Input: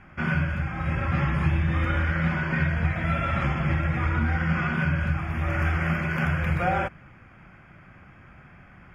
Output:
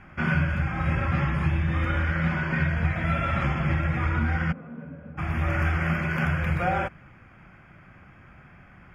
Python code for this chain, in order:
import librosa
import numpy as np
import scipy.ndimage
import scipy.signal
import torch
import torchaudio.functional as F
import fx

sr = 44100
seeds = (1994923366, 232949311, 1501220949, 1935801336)

y = fx.rider(x, sr, range_db=10, speed_s=0.5)
y = fx.double_bandpass(y, sr, hz=350.0, octaves=0.79, at=(4.51, 5.17), fade=0.02)